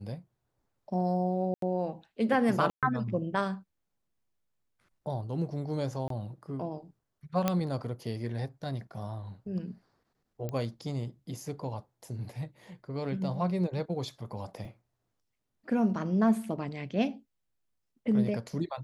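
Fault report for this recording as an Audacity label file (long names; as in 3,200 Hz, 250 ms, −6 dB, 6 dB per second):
1.540000	1.620000	drop-out 83 ms
2.700000	2.830000	drop-out 127 ms
6.080000	6.100000	drop-out 23 ms
7.480000	7.480000	click −12 dBFS
10.490000	10.490000	click −23 dBFS
14.650000	14.650000	drop-out 2.6 ms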